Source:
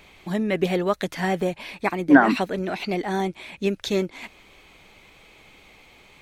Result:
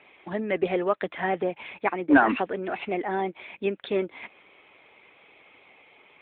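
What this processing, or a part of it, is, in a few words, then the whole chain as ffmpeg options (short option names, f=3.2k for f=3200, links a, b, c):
telephone: -filter_complex "[0:a]asettb=1/sr,asplit=3[a][b][c];[a]atrim=end=1.344[d];[b]atrim=start=1.34:end=2.79,asetpts=PTS-STARTPTS,afade=t=in:d=0.004:c=qsin,afade=t=out:st=1.446:d=0.004:c=qsin,adynamicequalizer=threshold=0.00891:dfrequency=590:dqfactor=7.8:tfrequency=590:tqfactor=7.8:attack=5:release=100:ratio=0.375:range=3:mode=cutabove:tftype=bell[e];[c]atrim=start=2.786[f];[d][e]acrossfade=d=0.004:c1=hsin:c2=qsin[g];[g][f]acrossfade=d=0.004:c1=qsin:c2=hsin,highpass=310,lowpass=3.2k,asoftclip=type=tanh:threshold=-6.5dB" -ar 8000 -c:a libopencore_amrnb -b:a 12200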